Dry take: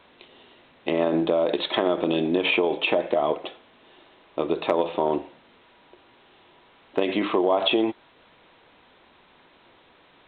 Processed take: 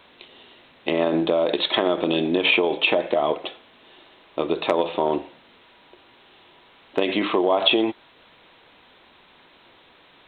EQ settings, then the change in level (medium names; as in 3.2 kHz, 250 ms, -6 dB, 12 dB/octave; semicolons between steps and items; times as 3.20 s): treble shelf 2.8 kHz +7.5 dB; +1.0 dB